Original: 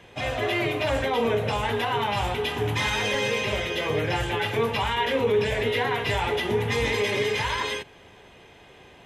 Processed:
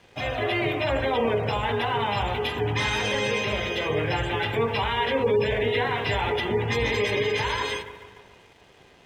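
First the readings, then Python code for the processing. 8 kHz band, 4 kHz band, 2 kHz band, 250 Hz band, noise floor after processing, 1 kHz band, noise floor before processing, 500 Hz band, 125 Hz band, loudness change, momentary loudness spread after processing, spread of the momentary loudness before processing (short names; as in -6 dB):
-3.0 dB, -0.5 dB, 0.0 dB, 0.0 dB, -54 dBFS, 0.0 dB, -51 dBFS, 0.0 dB, +0.5 dB, 0.0 dB, 3 LU, 3 LU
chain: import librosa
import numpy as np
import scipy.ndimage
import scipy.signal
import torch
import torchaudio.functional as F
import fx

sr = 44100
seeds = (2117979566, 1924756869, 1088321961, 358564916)

y = fx.echo_wet_lowpass(x, sr, ms=144, feedback_pct=60, hz=2400.0, wet_db=-12.0)
y = fx.spec_gate(y, sr, threshold_db=-30, keep='strong')
y = np.sign(y) * np.maximum(np.abs(y) - 10.0 ** (-54.0 / 20.0), 0.0)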